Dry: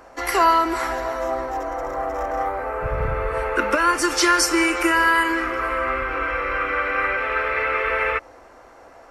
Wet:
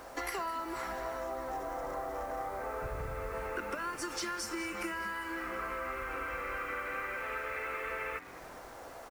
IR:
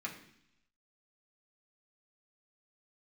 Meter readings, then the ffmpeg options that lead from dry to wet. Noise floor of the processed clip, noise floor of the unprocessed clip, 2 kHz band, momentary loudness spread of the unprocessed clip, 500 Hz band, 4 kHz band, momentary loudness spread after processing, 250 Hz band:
-49 dBFS, -47 dBFS, -17.0 dB, 10 LU, -15.0 dB, -17.5 dB, 3 LU, -17.0 dB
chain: -filter_complex "[0:a]acompressor=threshold=-33dB:ratio=12,acrusher=bits=8:mix=0:aa=0.000001,asplit=2[a][b];[b]asplit=5[c][d][e][f][g];[c]adelay=207,afreqshift=-130,volume=-14.5dB[h];[d]adelay=414,afreqshift=-260,volume=-19.7dB[i];[e]adelay=621,afreqshift=-390,volume=-24.9dB[j];[f]adelay=828,afreqshift=-520,volume=-30.1dB[k];[g]adelay=1035,afreqshift=-650,volume=-35.3dB[l];[h][i][j][k][l]amix=inputs=5:normalize=0[m];[a][m]amix=inputs=2:normalize=0,volume=-2dB"

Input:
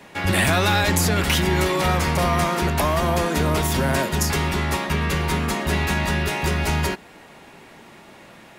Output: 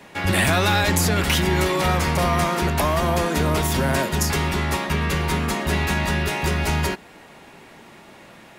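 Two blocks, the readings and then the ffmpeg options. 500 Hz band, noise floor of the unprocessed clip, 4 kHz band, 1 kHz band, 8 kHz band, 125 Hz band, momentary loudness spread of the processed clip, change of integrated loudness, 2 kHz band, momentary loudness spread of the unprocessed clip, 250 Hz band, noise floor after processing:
0.0 dB, -46 dBFS, 0.0 dB, 0.0 dB, 0.0 dB, 0.0 dB, 5 LU, 0.0 dB, 0.0 dB, 5 LU, 0.0 dB, -46 dBFS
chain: -af "asoftclip=type=hard:threshold=-7.5dB"

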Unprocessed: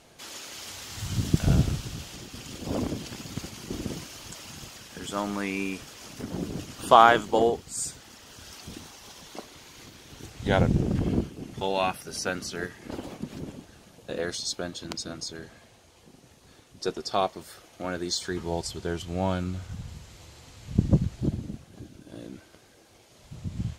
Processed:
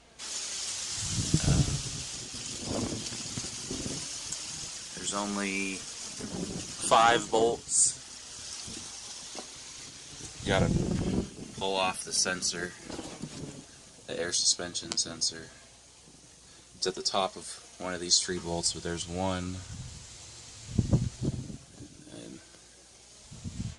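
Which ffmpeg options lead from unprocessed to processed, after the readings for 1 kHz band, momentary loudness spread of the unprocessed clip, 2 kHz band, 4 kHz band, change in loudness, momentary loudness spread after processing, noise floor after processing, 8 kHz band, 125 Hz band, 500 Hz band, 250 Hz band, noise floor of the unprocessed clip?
-5.5 dB, 21 LU, -2.0 dB, +4.0 dB, -2.0 dB, 19 LU, -55 dBFS, +8.5 dB, -4.0 dB, -4.0 dB, -4.0 dB, -56 dBFS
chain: -filter_complex "[0:a]equalizer=f=2.1k:w=0.39:g=3.5,acrossover=split=420|5100[a][b][c];[b]asoftclip=type=tanh:threshold=-11.5dB[d];[c]dynaudnorm=f=150:g=3:m=13dB[e];[a][d][e]amix=inputs=3:normalize=0,flanger=delay=4.2:depth=4.8:regen=67:speed=0.17:shape=triangular,aeval=exprs='val(0)+0.000562*(sin(2*PI*60*n/s)+sin(2*PI*2*60*n/s)/2+sin(2*PI*3*60*n/s)/3+sin(2*PI*4*60*n/s)/4+sin(2*PI*5*60*n/s)/5)':c=same,aresample=22050,aresample=44100"

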